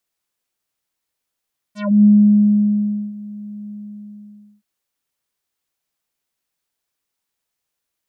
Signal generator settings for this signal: synth note square G#3 24 dB/octave, low-pass 280 Hz, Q 2.4, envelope 5.5 oct, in 0.16 s, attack 287 ms, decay 1.09 s, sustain -22.5 dB, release 0.92 s, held 1.95 s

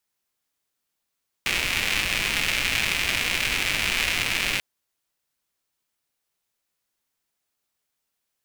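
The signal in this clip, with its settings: rain from filtered ticks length 3.14 s, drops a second 250, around 2.4 kHz, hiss -8 dB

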